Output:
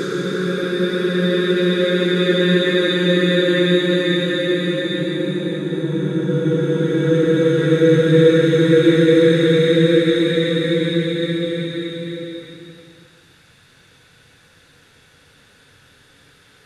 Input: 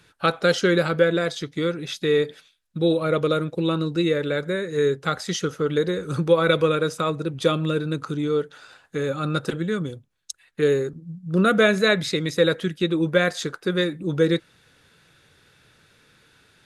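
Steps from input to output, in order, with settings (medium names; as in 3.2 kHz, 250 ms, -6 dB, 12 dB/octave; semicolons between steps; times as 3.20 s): Paulstretch 13×, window 0.50 s, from 13.57 s; trim +6.5 dB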